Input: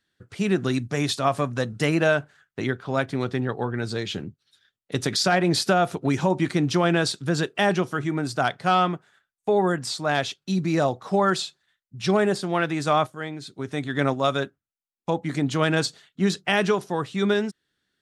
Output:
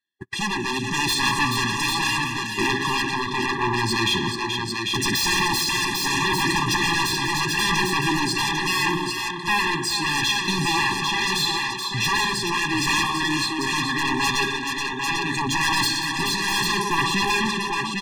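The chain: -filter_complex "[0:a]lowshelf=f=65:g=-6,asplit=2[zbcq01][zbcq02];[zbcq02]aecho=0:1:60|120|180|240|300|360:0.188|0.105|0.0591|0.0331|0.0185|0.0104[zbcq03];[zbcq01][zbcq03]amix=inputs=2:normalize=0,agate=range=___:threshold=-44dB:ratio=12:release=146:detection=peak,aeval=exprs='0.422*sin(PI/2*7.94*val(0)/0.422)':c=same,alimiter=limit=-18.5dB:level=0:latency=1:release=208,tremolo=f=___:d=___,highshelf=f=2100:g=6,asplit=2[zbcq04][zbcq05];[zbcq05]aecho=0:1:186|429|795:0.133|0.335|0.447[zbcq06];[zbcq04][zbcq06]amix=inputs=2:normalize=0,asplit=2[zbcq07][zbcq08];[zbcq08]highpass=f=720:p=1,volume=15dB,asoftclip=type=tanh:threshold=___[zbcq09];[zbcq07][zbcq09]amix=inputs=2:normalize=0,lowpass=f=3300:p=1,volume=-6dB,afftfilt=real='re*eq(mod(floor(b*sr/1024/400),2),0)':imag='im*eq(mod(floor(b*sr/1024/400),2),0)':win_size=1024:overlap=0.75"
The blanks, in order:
-42dB, 0.76, 0.51, -9.5dB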